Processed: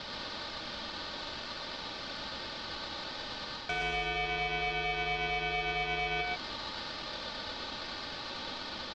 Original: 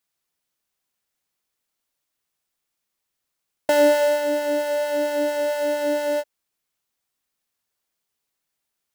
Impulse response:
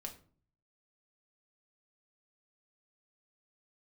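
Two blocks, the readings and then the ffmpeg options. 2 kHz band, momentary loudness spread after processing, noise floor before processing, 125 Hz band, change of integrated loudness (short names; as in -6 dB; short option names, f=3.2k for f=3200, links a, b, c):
-1.0 dB, 7 LU, -81 dBFS, n/a, -13.5 dB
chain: -af "aeval=exprs='val(0)+0.5*0.0266*sgn(val(0))':c=same,acrusher=bits=6:mix=0:aa=0.000001,tiltshelf=f=900:g=-9.5,bandreject=f=1.1k:w=7.4,aecho=1:1:3.2:0.84,highpass=f=370:t=q:w=0.5412,highpass=f=370:t=q:w=1.307,lowpass=f=2.9k:t=q:w=0.5176,lowpass=f=2.9k:t=q:w=0.7071,lowpass=f=2.9k:t=q:w=1.932,afreqshift=190,aeval=exprs='0.473*(cos(1*acos(clip(val(0)/0.473,-1,1)))-cos(1*PI/2))+0.119*(cos(4*acos(clip(val(0)/0.473,-1,1)))-cos(4*PI/2))':c=same,alimiter=limit=-13.5dB:level=0:latency=1:release=155,aeval=exprs='val(0)*sin(2*PI*1500*n/s)':c=same,areverse,acompressor=threshold=-28dB:ratio=6,areverse,aecho=1:1:121:0.631"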